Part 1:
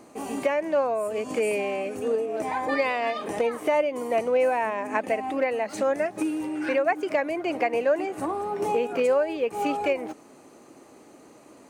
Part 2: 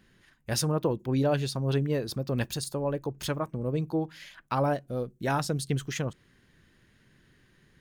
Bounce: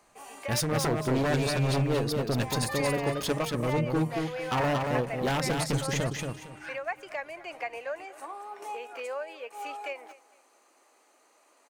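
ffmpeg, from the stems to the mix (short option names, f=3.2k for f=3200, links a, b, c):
-filter_complex "[0:a]highpass=810,volume=-6.5dB,asplit=2[a][b];[b]volume=-19.5dB[c];[1:a]agate=range=-33dB:threshold=-54dB:ratio=3:detection=peak,bandreject=f=50:t=h:w=6,bandreject=f=100:t=h:w=6,bandreject=f=150:t=h:w=6,aeval=exprs='0.0631*(abs(mod(val(0)/0.0631+3,4)-2)-1)':c=same,volume=2dB,asplit=2[d][e];[e]volume=-4dB[f];[c][f]amix=inputs=2:normalize=0,aecho=0:1:229|458|687|916:1|0.25|0.0625|0.0156[g];[a][d][g]amix=inputs=3:normalize=0"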